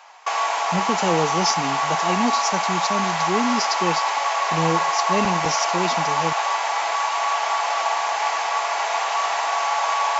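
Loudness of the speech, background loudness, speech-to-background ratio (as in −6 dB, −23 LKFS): −26.0 LKFS, −22.0 LKFS, −4.0 dB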